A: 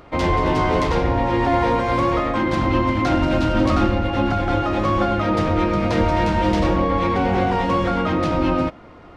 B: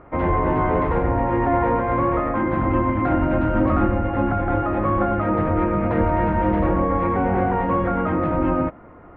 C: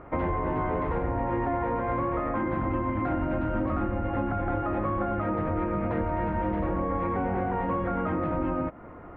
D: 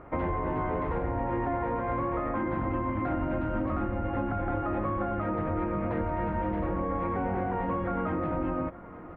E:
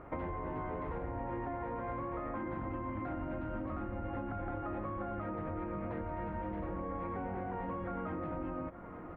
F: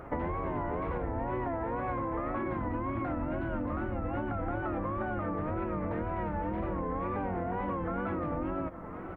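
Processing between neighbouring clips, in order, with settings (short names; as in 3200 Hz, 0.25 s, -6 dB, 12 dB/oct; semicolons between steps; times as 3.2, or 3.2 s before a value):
LPF 1900 Hz 24 dB/oct; gain -1 dB
compressor 4:1, threshold -26 dBFS, peak gain reduction 10.5 dB
echo 0.872 s -18.5 dB; gain -2 dB
compressor 4:1, threshold -34 dBFS, peak gain reduction 7.5 dB; gain -2.5 dB
wow and flutter 110 cents; gain +5.5 dB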